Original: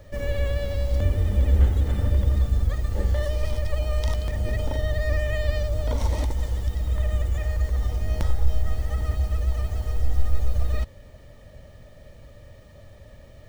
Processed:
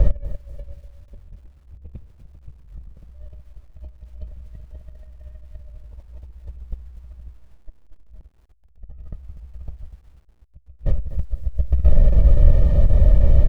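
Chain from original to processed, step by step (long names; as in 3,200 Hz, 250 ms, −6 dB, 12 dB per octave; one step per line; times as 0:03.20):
loose part that buzzes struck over −25 dBFS, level −31 dBFS
single-tap delay 1,044 ms −18 dB
0:07.33–0:08.09: phases set to zero 310 Hz
spectral tilt −4.5 dB per octave
in parallel at −0.5 dB: brickwall limiter −18.5 dBFS, peak gain reduction 32 dB
on the sum: compressor whose output falls as the input rises −19 dBFS, ratio −0.5
thirty-one-band graphic EQ 100 Hz −11 dB, 250 Hz −7 dB, 1,600 Hz −7 dB
feedback echo at a low word length 245 ms, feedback 35%, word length 8 bits, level −13 dB
level −3 dB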